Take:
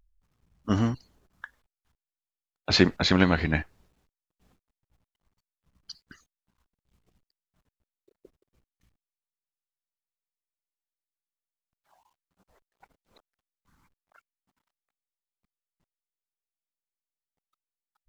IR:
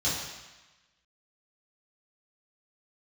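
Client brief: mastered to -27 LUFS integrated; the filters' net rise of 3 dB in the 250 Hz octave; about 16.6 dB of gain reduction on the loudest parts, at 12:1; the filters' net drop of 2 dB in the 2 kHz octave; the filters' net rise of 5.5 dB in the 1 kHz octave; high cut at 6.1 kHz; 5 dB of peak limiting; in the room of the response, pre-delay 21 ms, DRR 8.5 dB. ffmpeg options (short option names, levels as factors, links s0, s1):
-filter_complex "[0:a]lowpass=6100,equalizer=f=250:t=o:g=3.5,equalizer=f=1000:t=o:g=9,equalizer=f=2000:t=o:g=-6.5,acompressor=threshold=0.0398:ratio=12,alimiter=limit=0.0944:level=0:latency=1,asplit=2[s0][s1];[1:a]atrim=start_sample=2205,adelay=21[s2];[s1][s2]afir=irnorm=-1:irlink=0,volume=0.126[s3];[s0][s3]amix=inputs=2:normalize=0,volume=2.99"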